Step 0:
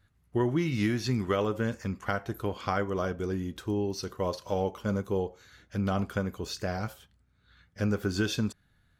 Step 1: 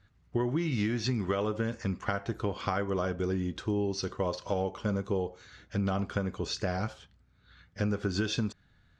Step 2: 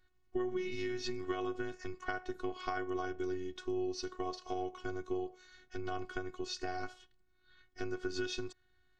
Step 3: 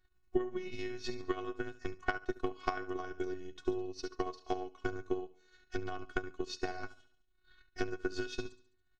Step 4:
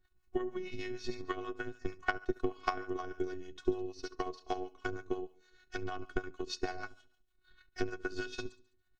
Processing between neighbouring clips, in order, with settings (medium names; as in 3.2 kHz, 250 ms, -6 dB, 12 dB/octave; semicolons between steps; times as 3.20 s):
compression, threshold -29 dBFS, peak gain reduction 7 dB; low-pass 6.7 kHz 24 dB/octave; trim +3 dB
robot voice 368 Hz; trim -4 dB
on a send: feedback delay 70 ms, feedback 48%, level -9.5 dB; on the sum: transient shaper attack +10 dB, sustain -8 dB; trim -3.5 dB
harmonic tremolo 6.5 Hz, depth 70%, crossover 600 Hz; trim +3.5 dB